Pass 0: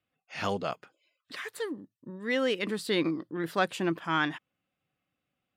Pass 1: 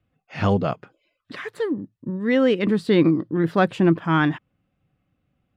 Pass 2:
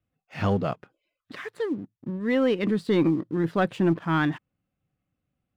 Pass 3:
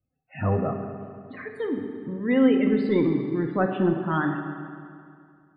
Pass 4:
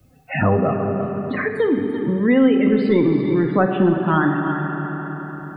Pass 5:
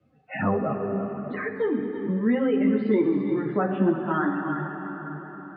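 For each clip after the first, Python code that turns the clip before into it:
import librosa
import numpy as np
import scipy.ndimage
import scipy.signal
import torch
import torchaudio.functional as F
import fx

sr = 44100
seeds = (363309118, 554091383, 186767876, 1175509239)

y1 = fx.riaa(x, sr, side='playback')
y1 = y1 * librosa.db_to_amplitude(6.5)
y2 = fx.leveller(y1, sr, passes=1)
y2 = y2 * librosa.db_to_amplitude(-7.5)
y3 = fx.spec_topn(y2, sr, count=32)
y3 = fx.rev_fdn(y3, sr, rt60_s=2.3, lf_ratio=1.0, hf_ratio=0.75, size_ms=23.0, drr_db=3.0)
y3 = y3 * librosa.db_to_amplitude(-1.0)
y4 = y3 + 10.0 ** (-13.0 / 20.0) * np.pad(y3, (int(338 * sr / 1000.0), 0))[:len(y3)]
y4 = fx.band_squash(y4, sr, depth_pct=70)
y4 = y4 * librosa.db_to_amplitude(6.5)
y5 = fx.bandpass_edges(y4, sr, low_hz=140.0, high_hz=2500.0)
y5 = fx.ensemble(y5, sr)
y5 = y5 * librosa.db_to_amplitude(-3.5)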